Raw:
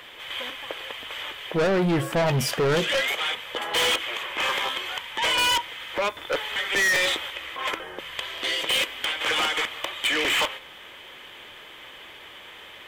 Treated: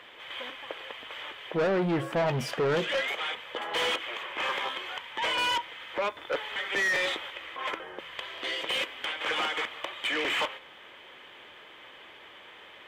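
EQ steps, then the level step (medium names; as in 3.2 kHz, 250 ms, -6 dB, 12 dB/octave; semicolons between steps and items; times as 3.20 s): low-pass 2.4 kHz 6 dB/octave; bass shelf 110 Hz -11 dB; -3.0 dB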